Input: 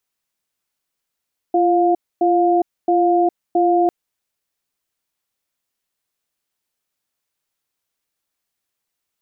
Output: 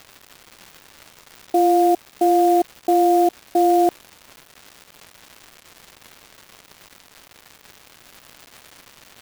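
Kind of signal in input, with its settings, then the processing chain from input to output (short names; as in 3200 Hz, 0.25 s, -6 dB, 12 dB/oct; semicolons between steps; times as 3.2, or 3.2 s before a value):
cadence 345 Hz, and 707 Hz, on 0.41 s, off 0.26 s, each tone -15 dBFS 2.35 s
crackle 560/s -31 dBFS; clock jitter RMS 0.024 ms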